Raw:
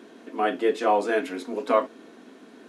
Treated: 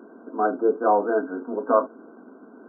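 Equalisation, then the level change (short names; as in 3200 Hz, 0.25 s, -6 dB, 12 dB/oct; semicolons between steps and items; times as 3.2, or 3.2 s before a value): brick-wall FIR band-pass 170–1600 Hz; +2.0 dB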